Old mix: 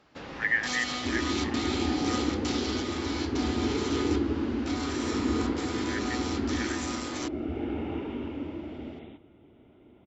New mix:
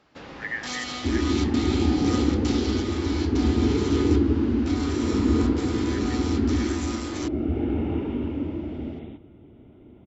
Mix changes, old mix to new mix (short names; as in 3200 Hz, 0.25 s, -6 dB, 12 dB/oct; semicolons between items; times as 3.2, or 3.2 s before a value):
speech -5.5 dB; second sound: add low shelf 360 Hz +11 dB